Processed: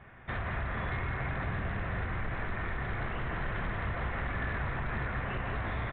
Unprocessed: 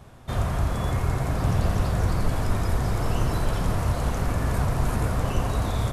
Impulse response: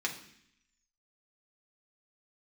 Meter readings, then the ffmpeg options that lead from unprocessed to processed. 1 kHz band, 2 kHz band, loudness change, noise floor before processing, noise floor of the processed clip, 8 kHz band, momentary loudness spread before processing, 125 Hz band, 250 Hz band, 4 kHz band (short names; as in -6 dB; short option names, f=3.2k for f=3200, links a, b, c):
-6.5 dB, +1.5 dB, -9.0 dB, -33 dBFS, -44 dBFS, under -40 dB, 2 LU, -11.5 dB, -11.0 dB, -10.5 dB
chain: -filter_complex "[0:a]lowpass=2.6k,equalizer=f=1.9k:t=o:w=1:g=15,acompressor=threshold=-23dB:ratio=4,aresample=8000,asoftclip=type=hard:threshold=-22dB,aresample=44100,aecho=1:1:169:0.422,asplit=2[a][b];[1:a]atrim=start_sample=2205[c];[b][c]afir=irnorm=-1:irlink=0,volume=-13.5dB[d];[a][d]amix=inputs=2:normalize=0,volume=-8.5dB"